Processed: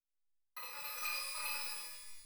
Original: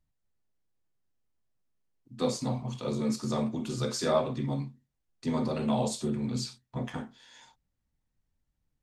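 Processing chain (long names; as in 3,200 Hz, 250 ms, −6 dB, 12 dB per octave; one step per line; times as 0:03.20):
linear delta modulator 64 kbit/s, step −38.5 dBFS
high-shelf EQ 2,100 Hz +10.5 dB
noise gate −31 dBFS, range −56 dB
stiff-string resonator 310 Hz, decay 0.33 s, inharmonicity 0.03
change of speed 3.92×
parametric band 600 Hz −3 dB 2.5 octaves
reverb with rising layers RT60 1.1 s, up +12 semitones, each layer −2 dB, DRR −3.5 dB
level +2.5 dB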